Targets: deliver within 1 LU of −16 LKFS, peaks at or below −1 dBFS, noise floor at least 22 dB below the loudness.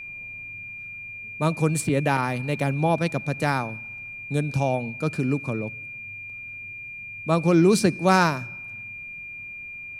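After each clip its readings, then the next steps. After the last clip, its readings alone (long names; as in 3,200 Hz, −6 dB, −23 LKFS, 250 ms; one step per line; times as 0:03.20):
interfering tone 2,400 Hz; level of the tone −35 dBFS; integrated loudness −25.5 LKFS; sample peak −4.5 dBFS; target loudness −16.0 LKFS
→ notch filter 2,400 Hz, Q 30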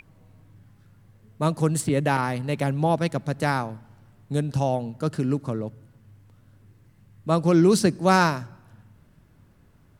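interfering tone none found; integrated loudness −23.5 LKFS; sample peak −5.0 dBFS; target loudness −16.0 LKFS
→ level +7.5 dB
brickwall limiter −1 dBFS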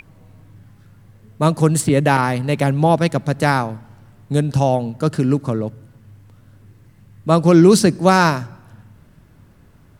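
integrated loudness −16.5 LKFS; sample peak −1.0 dBFS; background noise floor −50 dBFS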